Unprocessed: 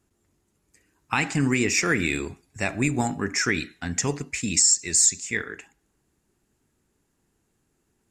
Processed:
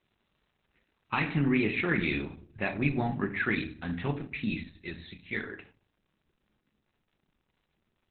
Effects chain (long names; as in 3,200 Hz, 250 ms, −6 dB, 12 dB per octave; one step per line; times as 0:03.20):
surface crackle 470 per second −51 dBFS, from 0:01.36 150 per second
rectangular room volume 270 cubic metres, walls furnished, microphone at 1 metre
level −4.5 dB
Opus 8 kbit/s 48,000 Hz